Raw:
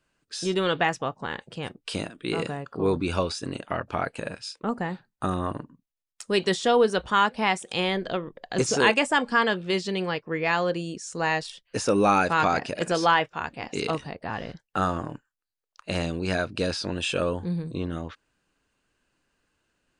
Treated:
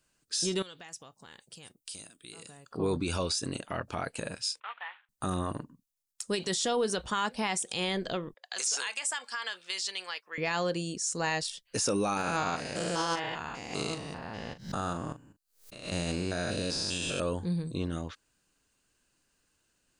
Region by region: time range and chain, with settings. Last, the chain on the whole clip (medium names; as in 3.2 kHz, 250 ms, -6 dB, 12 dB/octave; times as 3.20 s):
0.62–2.71 s: pre-emphasis filter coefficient 0.8 + compression 3:1, threshold -44 dBFS
4.60–5.09 s: CVSD coder 16 kbps + high-pass 1 kHz 24 dB/octave
8.34–10.38 s: high-pass 1.2 kHz + compression 5:1, threshold -28 dBFS + tape noise reduction on one side only decoder only
12.17–17.20 s: spectrogram pixelated in time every 200 ms + doubling 40 ms -11 dB + swell ahead of each attack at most 140 dB/s
whole clip: tone controls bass +2 dB, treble +12 dB; peak limiter -16 dBFS; trim -4 dB